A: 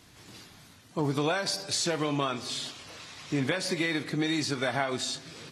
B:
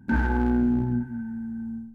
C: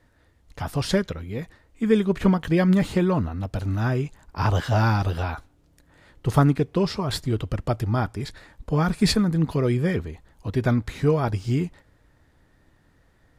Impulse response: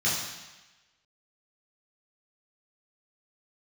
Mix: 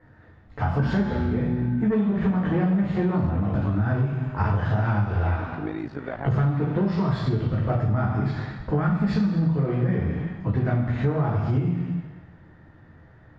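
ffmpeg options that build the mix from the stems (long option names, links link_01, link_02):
-filter_complex "[0:a]tremolo=f=54:d=0.824,lowpass=frequency=1200:poles=1,adelay=1450,volume=2dB[link_01];[1:a]acompressor=threshold=-24dB:ratio=6,adelay=700,volume=1dB,asplit=2[link_02][link_03];[link_03]volume=-9.5dB[link_04];[2:a]asoftclip=type=tanh:threshold=-18.5dB,volume=2dB,asplit=2[link_05][link_06];[link_06]volume=-5dB[link_07];[3:a]atrim=start_sample=2205[link_08];[link_04][link_07]amix=inputs=2:normalize=0[link_09];[link_09][link_08]afir=irnorm=-1:irlink=0[link_10];[link_01][link_02][link_05][link_10]amix=inputs=4:normalize=0,lowpass=2000,acompressor=threshold=-20dB:ratio=6"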